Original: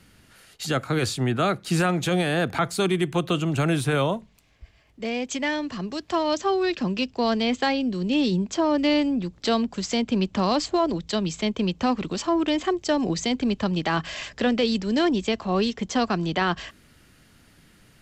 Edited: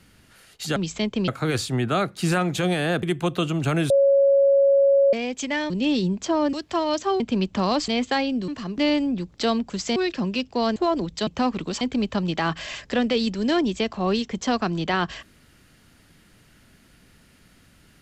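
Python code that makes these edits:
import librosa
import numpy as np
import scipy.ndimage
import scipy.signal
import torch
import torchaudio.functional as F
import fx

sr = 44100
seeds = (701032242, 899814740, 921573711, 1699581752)

y = fx.edit(x, sr, fx.cut(start_s=2.51, length_s=0.44),
    fx.bleep(start_s=3.82, length_s=1.23, hz=554.0, db=-13.5),
    fx.swap(start_s=5.62, length_s=0.3, other_s=7.99, other_length_s=0.83),
    fx.swap(start_s=6.59, length_s=0.8, other_s=10.0, other_length_s=0.68),
    fx.move(start_s=11.19, length_s=0.52, to_s=0.76),
    fx.cut(start_s=12.25, length_s=1.04), tone=tone)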